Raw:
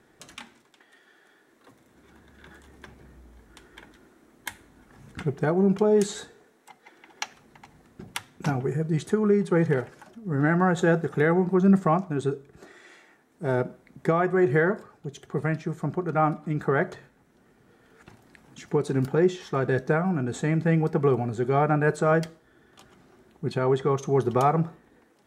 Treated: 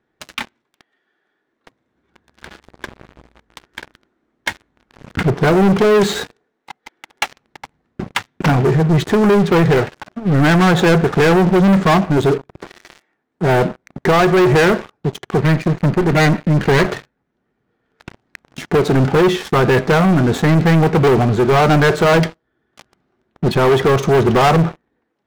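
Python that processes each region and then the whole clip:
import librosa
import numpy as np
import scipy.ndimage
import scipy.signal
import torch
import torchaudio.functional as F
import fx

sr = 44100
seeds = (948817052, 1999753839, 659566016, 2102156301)

y = fx.chain(x, sr, fx.lower_of_two(delay_ms=0.45),
    fx.air_absorb(metres=110.0), at=(15.41, 16.86))
y = fx.dynamic_eq(y, sr, hz=2200.0, q=1.9, threshold_db=-43.0, ratio=4.0, max_db=3)
y = scipy.signal.sosfilt(scipy.signal.butter(2, 4100.0, 'lowpass', fs=sr, output='sos'), y)
y = fx.leveller(y, sr, passes=5)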